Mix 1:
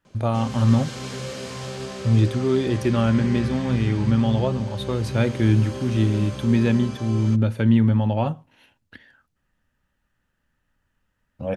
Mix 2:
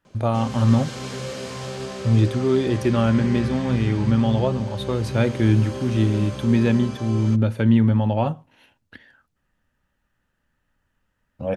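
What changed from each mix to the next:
master: add parametric band 630 Hz +2 dB 2.4 octaves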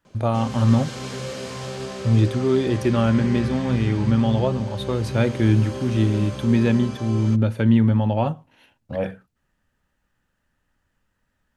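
second voice: entry −2.50 s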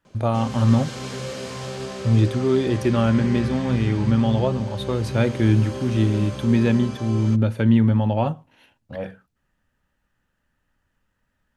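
second voice −5.5 dB

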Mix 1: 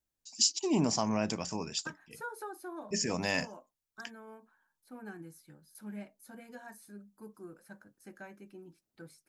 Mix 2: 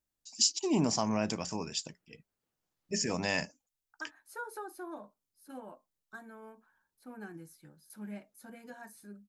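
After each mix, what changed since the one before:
second voice: entry +2.15 s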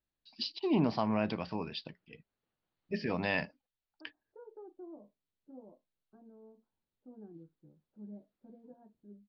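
first voice: add Butterworth low-pass 4,500 Hz 72 dB per octave
second voice: add transistor ladder low-pass 660 Hz, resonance 20%

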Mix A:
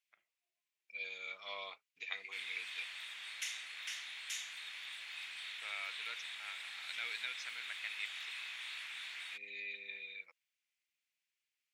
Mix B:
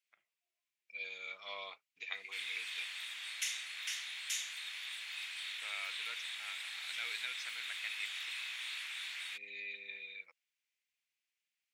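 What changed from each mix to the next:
background: add spectral tilt +2 dB per octave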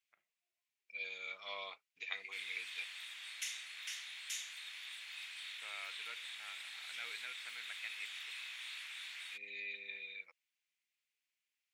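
first voice: add high-frequency loss of the air 360 metres
background −4.5 dB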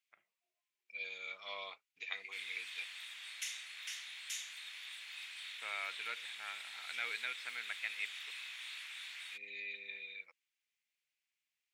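first voice +7.0 dB

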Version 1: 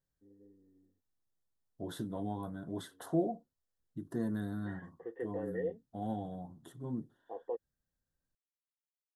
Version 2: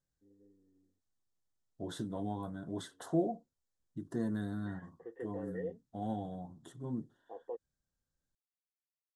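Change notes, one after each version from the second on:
first voice −4.0 dB
second voice: add low-pass with resonance 7,600 Hz, resonance Q 1.6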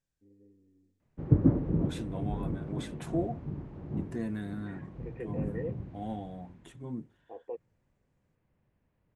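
first voice: add spectral tilt −2.5 dB per octave
background: unmuted
master: remove Butterworth band-reject 2,400 Hz, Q 1.6

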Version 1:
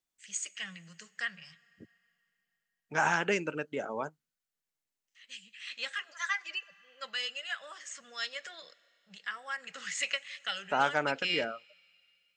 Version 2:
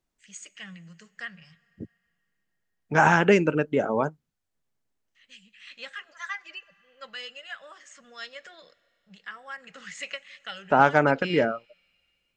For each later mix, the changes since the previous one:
second voice +9.0 dB
master: add spectral tilt −2.5 dB per octave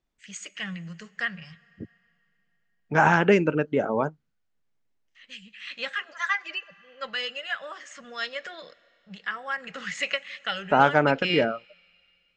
first voice +9.0 dB
master: add high-frequency loss of the air 78 metres

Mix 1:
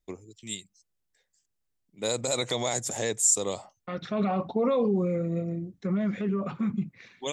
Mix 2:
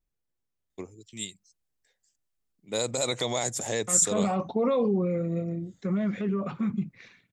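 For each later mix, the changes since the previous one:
first voice: entry +0.70 s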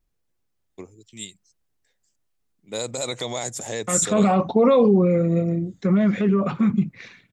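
second voice +9.0 dB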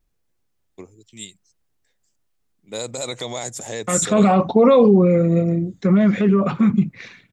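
second voice +3.5 dB

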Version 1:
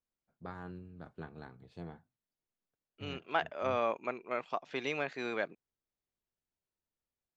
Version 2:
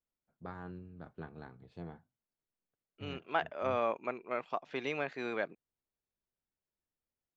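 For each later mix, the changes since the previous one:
master: add high-shelf EQ 4,600 Hz −8.5 dB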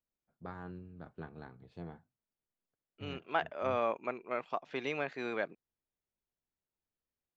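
nothing changed

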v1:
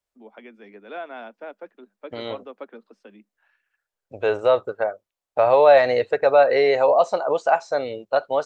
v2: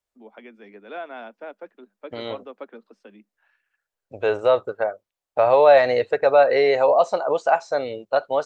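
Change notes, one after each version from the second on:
nothing changed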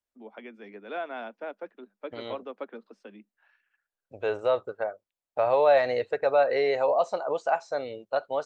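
second voice −7.0 dB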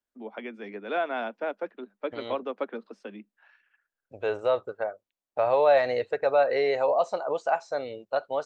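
first voice +6.0 dB

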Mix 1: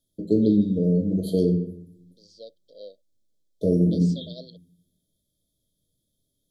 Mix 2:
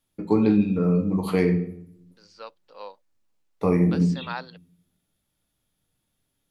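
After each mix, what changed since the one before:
master: remove linear-phase brick-wall band-stop 680–3,100 Hz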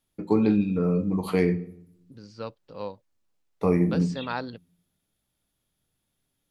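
first voice: send −7.5 dB
second voice: remove high-pass filter 670 Hz 12 dB per octave

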